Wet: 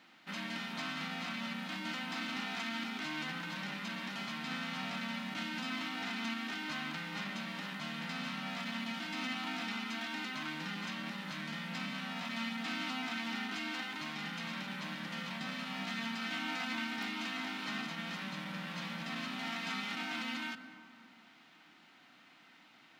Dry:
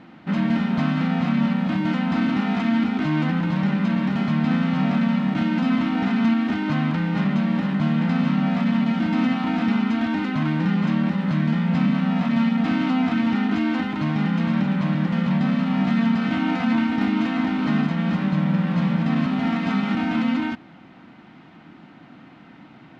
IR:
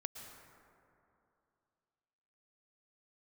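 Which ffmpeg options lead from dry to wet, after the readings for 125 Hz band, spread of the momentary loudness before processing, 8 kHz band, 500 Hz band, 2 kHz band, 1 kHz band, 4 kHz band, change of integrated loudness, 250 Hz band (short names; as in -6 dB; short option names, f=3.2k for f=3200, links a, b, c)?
-25.5 dB, 2 LU, n/a, -17.5 dB, -7.5 dB, -13.0 dB, -3.0 dB, -17.0 dB, -23.0 dB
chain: -filter_complex "[0:a]aderivative,bandreject=f=50:t=h:w=6,bandreject=f=100:t=h:w=6,bandreject=f=150:t=h:w=6,asplit=2[a][b];[1:a]atrim=start_sample=2205,lowshelf=f=410:g=10[c];[b][c]afir=irnorm=-1:irlink=0,volume=-3dB[d];[a][d]amix=inputs=2:normalize=0"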